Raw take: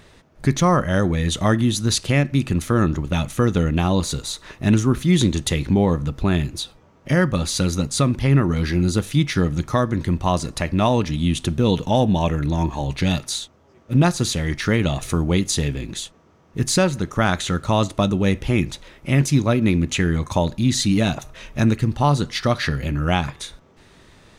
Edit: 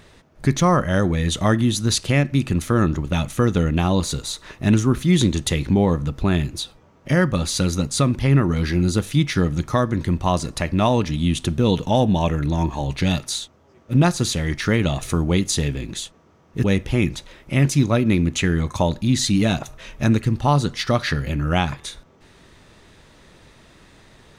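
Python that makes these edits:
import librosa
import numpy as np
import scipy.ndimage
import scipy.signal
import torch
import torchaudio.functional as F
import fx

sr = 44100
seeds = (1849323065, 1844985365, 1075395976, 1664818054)

y = fx.edit(x, sr, fx.cut(start_s=16.64, length_s=1.56), tone=tone)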